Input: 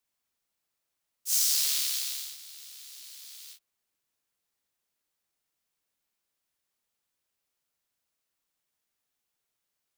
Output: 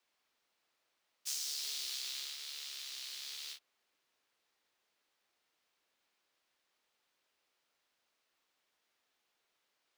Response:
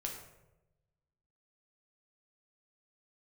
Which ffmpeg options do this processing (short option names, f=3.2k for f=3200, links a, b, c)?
-filter_complex "[0:a]acrossover=split=260 5300:gain=0.224 1 0.2[a][b][c];[a][b][c]amix=inputs=3:normalize=0,acrossover=split=160|710|3600[d][e][f][g];[f]alimiter=level_in=10dB:limit=-24dB:level=0:latency=1,volume=-10dB[h];[d][e][h][g]amix=inputs=4:normalize=0,acompressor=threshold=-45dB:ratio=6,volume=7.5dB"